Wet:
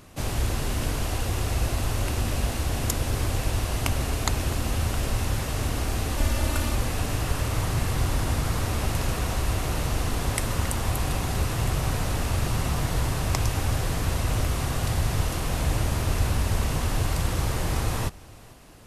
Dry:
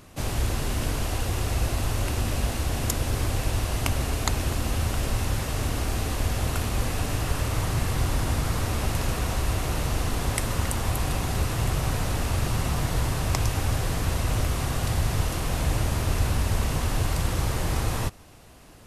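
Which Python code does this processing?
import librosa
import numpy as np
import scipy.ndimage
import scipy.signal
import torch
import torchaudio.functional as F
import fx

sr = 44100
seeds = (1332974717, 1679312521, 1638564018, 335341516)

y = fx.comb(x, sr, ms=3.4, depth=0.7, at=(6.17, 6.75))
y = y + 10.0 ** (-23.0 / 20.0) * np.pad(y, (int(450 * sr / 1000.0), 0))[:len(y)]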